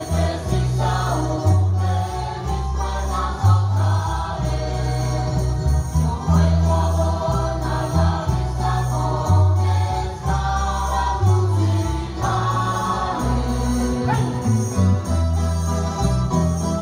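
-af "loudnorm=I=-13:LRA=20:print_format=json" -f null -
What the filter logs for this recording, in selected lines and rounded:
"input_i" : "-20.6",
"input_tp" : "-6.6",
"input_lra" : "0.9",
"input_thresh" : "-30.6",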